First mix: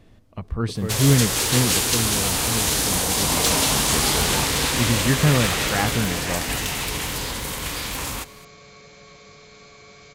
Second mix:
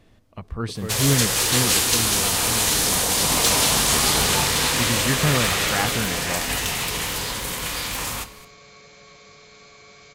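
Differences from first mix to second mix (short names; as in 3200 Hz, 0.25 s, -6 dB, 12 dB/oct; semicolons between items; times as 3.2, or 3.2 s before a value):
first sound: send on; master: add low shelf 460 Hz -4.5 dB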